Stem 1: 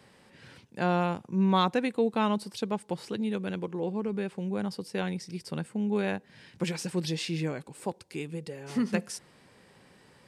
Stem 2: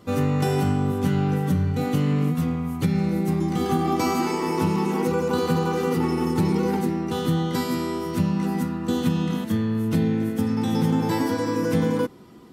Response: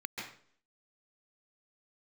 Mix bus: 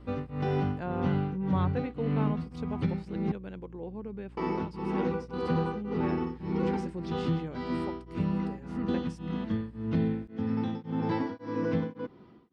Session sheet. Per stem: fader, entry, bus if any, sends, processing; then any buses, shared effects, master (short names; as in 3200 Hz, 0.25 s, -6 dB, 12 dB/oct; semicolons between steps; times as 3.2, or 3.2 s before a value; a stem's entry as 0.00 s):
-8.0 dB, 0.00 s, no send, treble ducked by the level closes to 2800 Hz, closed at -21.5 dBFS; high shelf 3000 Hz -11.5 dB; hum 60 Hz, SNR 10 dB
-5.5 dB, 0.00 s, muted 3.32–4.37, no send, Bessel low-pass 2900 Hz, order 8; beating tremolo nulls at 1.8 Hz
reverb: off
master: dry